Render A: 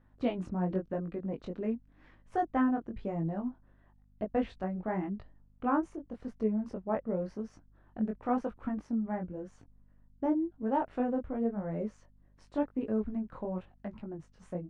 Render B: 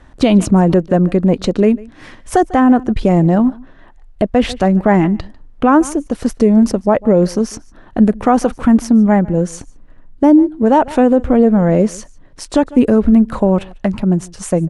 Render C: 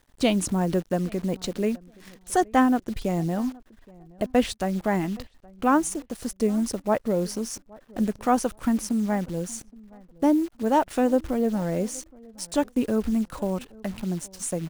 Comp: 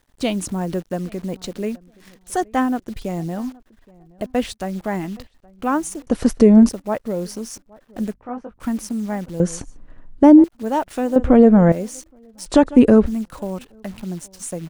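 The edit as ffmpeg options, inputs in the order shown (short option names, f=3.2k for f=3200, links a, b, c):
-filter_complex "[1:a]asplit=4[a][b][c][d];[2:a]asplit=6[e][f][g][h][i][j];[e]atrim=end=6.072[k];[a]atrim=start=6.068:end=6.692[l];[f]atrim=start=6.688:end=8.142[m];[0:a]atrim=start=8.138:end=8.602[n];[g]atrim=start=8.598:end=9.402[o];[b]atrim=start=9.398:end=10.442[p];[h]atrim=start=10.438:end=11.162[q];[c]atrim=start=11.158:end=11.722[r];[i]atrim=start=11.718:end=12.462[s];[d]atrim=start=12.458:end=13.062[t];[j]atrim=start=13.058[u];[k][l]acrossfade=d=0.004:c1=hsin:c2=hsin[v];[v][m]acrossfade=d=0.004:c1=hsin:c2=hsin[w];[w][n]acrossfade=d=0.004:c1=hsin:c2=hsin[x];[x][o]acrossfade=d=0.004:c1=hsin:c2=hsin[y];[y][p]acrossfade=d=0.004:c1=hsin:c2=hsin[z];[z][q]acrossfade=d=0.004:c1=hsin:c2=hsin[aa];[aa][r]acrossfade=d=0.004:c1=hsin:c2=hsin[ab];[ab][s]acrossfade=d=0.004:c1=hsin:c2=hsin[ac];[ac][t]acrossfade=d=0.004:c1=hsin:c2=hsin[ad];[ad][u]acrossfade=d=0.004:c1=hsin:c2=hsin"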